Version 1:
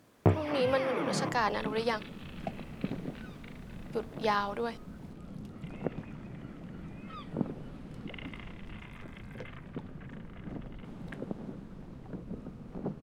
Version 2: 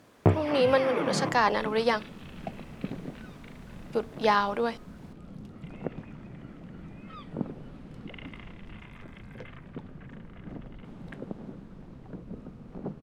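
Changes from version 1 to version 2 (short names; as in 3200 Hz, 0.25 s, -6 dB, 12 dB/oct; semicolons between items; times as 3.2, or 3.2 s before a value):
speech +6.0 dB; first sound +3.0 dB; master: add high shelf 8600 Hz -6 dB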